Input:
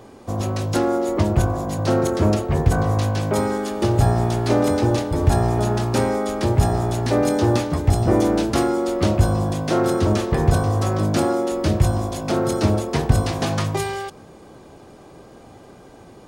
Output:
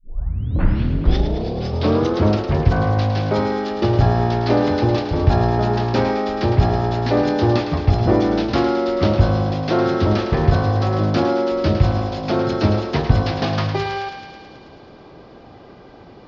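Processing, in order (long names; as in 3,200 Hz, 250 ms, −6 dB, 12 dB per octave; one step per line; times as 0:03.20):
turntable start at the beginning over 2.23 s
Butterworth low-pass 5,200 Hz 48 dB per octave
feedback echo with a high-pass in the loop 108 ms, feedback 74%, high-pass 630 Hz, level −8 dB
level +1.5 dB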